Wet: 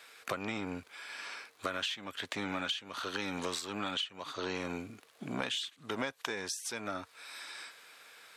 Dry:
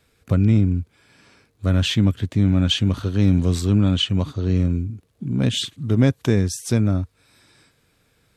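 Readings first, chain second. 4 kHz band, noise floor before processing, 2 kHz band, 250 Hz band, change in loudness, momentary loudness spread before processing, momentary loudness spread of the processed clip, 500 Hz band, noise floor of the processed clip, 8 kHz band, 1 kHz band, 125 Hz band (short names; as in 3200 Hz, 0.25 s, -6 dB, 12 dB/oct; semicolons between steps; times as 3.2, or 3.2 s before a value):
-10.5 dB, -64 dBFS, -3.0 dB, -21.0 dB, -17.5 dB, 9 LU, 11 LU, -12.0 dB, -64 dBFS, -8.5 dB, -1.0 dB, -32.0 dB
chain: in parallel at -3 dB: soft clip -21 dBFS, distortion -7 dB; on the sum: HPF 930 Hz 12 dB/oct; compressor 16:1, threshold -40 dBFS, peak gain reduction 26 dB; high shelf 4800 Hz -7 dB; gain +8.5 dB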